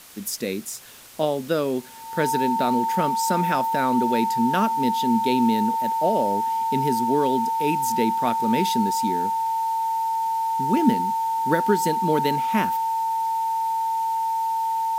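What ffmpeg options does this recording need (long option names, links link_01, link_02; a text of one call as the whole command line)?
ffmpeg -i in.wav -af "bandreject=frequency=900:width=30,afwtdn=0.0056" out.wav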